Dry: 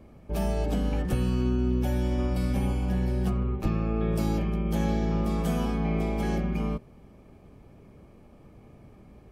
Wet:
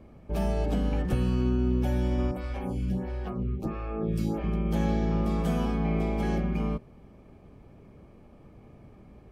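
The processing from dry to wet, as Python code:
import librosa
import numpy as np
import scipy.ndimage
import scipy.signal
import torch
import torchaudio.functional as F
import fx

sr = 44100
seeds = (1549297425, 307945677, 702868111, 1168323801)

y = fx.high_shelf(x, sr, hz=5800.0, db=-7.5)
y = fx.stagger_phaser(y, sr, hz=1.5, at=(2.31, 4.44))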